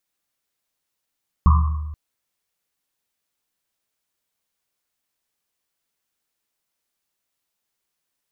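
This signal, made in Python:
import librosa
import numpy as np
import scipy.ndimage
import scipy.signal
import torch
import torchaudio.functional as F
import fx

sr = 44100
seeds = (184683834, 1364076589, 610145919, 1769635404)

y = fx.risset_drum(sr, seeds[0], length_s=0.48, hz=76.0, decay_s=1.45, noise_hz=1100.0, noise_width_hz=220.0, noise_pct=20)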